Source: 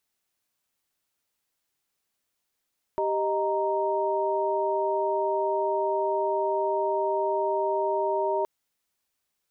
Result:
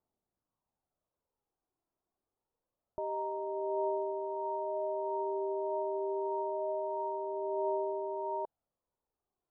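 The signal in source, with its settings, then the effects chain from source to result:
chord G4/D#5/A#5 sine, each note -27.5 dBFS 5.47 s
low-pass 1 kHz 24 dB/octave; peak limiter -28.5 dBFS; phaser 0.26 Hz, delay 3.1 ms, feedback 37%

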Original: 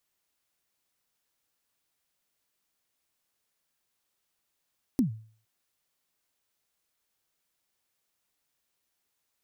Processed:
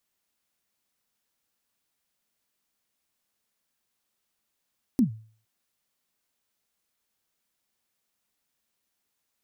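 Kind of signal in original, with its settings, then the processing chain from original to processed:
kick drum length 0.46 s, from 290 Hz, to 110 Hz, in 114 ms, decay 0.46 s, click on, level -17.5 dB
peaking EQ 220 Hz +7 dB 0.28 oct

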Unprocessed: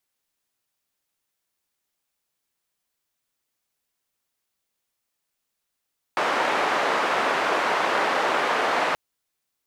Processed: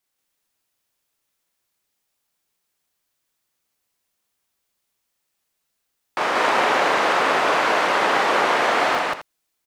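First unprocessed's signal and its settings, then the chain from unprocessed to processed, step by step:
noise band 450–1300 Hz, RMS -23 dBFS 2.78 s
loudspeakers at several distances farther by 13 m -3 dB, 63 m 0 dB, 91 m -11 dB

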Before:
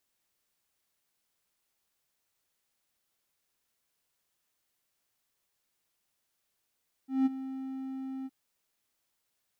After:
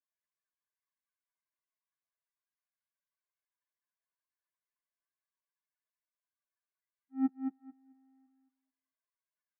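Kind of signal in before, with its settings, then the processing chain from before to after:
ADSR triangle 265 Hz, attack 179 ms, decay 23 ms, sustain -14.5 dB, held 1.18 s, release 35 ms -19 dBFS
expander on every frequency bin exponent 3; steep low-pass 2 kHz; on a send: feedback delay 220 ms, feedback 17%, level -6 dB

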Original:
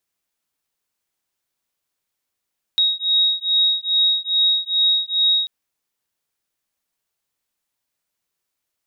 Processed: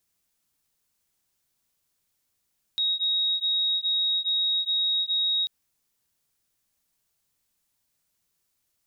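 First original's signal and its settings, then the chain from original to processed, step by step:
beating tones 3.78 kHz, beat 2.4 Hz, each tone -18.5 dBFS 2.69 s
tone controls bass +8 dB, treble +5 dB; compression, threshold -19 dBFS; peak limiter -21.5 dBFS

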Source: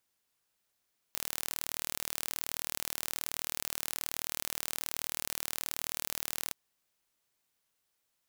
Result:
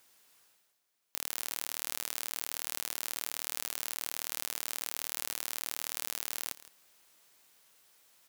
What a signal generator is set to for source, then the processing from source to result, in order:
pulse train 38.8 per s, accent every 0, -7.5 dBFS 5.38 s
bass shelf 160 Hz -11 dB; reverse; upward compressor, threshold -50 dBFS; reverse; delay 164 ms -17.5 dB

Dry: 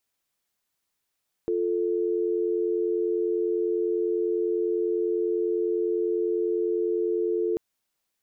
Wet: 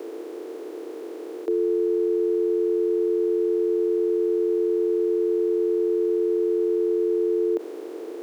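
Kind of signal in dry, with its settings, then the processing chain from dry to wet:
call progress tone dial tone, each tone -25.5 dBFS 6.09 s
spectral levelling over time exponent 0.2; steep high-pass 290 Hz 36 dB/octave; in parallel at +0.5 dB: peak limiter -27 dBFS

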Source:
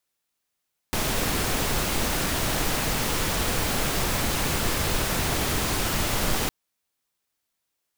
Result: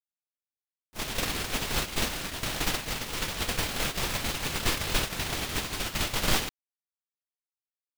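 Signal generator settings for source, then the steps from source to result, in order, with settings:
noise pink, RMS -25 dBFS 5.56 s
gate -23 dBFS, range -33 dB; dynamic bell 3.2 kHz, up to +6 dB, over -47 dBFS, Q 0.71

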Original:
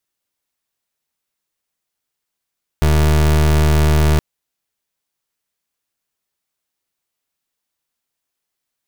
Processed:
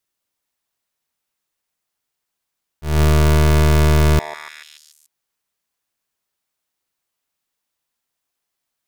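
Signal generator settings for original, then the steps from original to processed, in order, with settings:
pulse 76.2 Hz, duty 29% -12.5 dBFS 1.37 s
slow attack 193 ms; repeats whose band climbs or falls 145 ms, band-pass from 840 Hz, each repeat 0.7 oct, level -3 dB

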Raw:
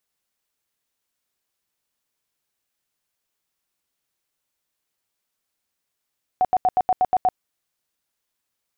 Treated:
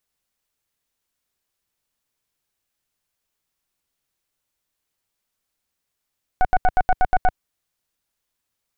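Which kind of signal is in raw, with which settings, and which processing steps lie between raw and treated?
tone bursts 740 Hz, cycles 28, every 0.12 s, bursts 8, -14 dBFS
tracing distortion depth 0.12 ms; bass shelf 93 Hz +9 dB

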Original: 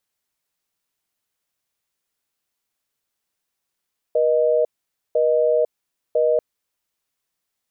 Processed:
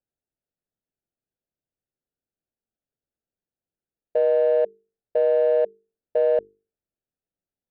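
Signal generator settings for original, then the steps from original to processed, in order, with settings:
call progress tone busy tone, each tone -17.5 dBFS 2.24 s
local Wiener filter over 41 samples; distance through air 140 m; hum notches 50/100/150/200/250/300/350/400/450 Hz

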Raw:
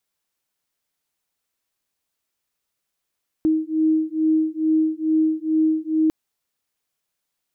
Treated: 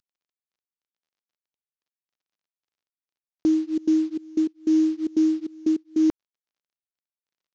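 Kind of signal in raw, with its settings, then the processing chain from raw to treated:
beating tones 314 Hz, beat 2.3 Hz, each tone -20 dBFS 2.65 s
CVSD coder 32 kbps; trance gate "xxx..x..xxxx." 151 bpm -24 dB

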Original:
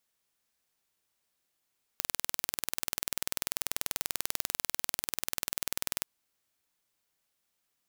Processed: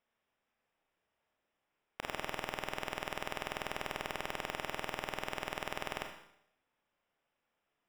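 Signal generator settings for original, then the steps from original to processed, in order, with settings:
pulse train 20.4 per s, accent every 0, -3 dBFS 4.04 s
Savitzky-Golay filter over 25 samples; peaking EQ 650 Hz +5 dB 1.5 oct; Schroeder reverb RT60 0.72 s, combs from 27 ms, DRR 3 dB

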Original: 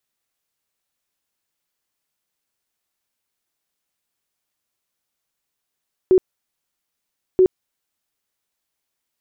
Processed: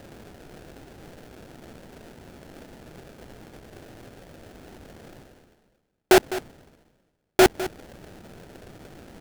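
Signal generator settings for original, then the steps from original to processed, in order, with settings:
tone bursts 372 Hz, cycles 26, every 1.28 s, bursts 2, -9 dBFS
reverse; upward compressor, threshold -19 dBFS; reverse; sample-rate reducer 1.1 kHz, jitter 20%; delay 205 ms -14.5 dB

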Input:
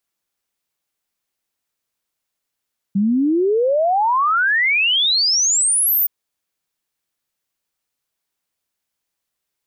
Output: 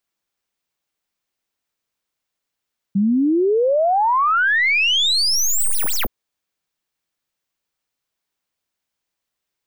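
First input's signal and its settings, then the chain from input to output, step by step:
log sweep 190 Hz -> 15 kHz 3.12 s -13.5 dBFS
tracing distortion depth 0.031 ms; peaking EQ 12 kHz -6.5 dB 0.99 oct

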